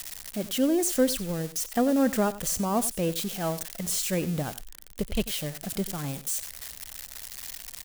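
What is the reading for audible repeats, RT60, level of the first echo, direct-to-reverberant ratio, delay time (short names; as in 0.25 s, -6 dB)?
1, none, -16.0 dB, none, 91 ms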